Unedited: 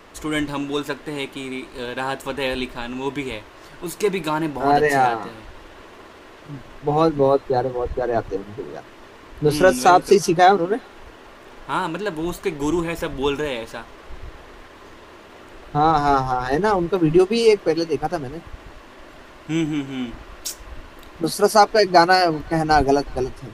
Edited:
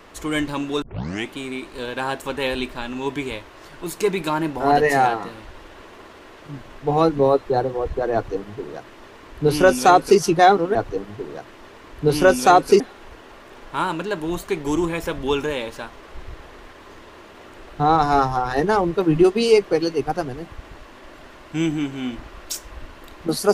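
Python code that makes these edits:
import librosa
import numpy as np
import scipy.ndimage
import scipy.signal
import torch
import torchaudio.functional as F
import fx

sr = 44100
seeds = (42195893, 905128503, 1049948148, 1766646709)

y = fx.edit(x, sr, fx.tape_start(start_s=0.82, length_s=0.47),
    fx.duplicate(start_s=8.14, length_s=2.05, to_s=10.75), tone=tone)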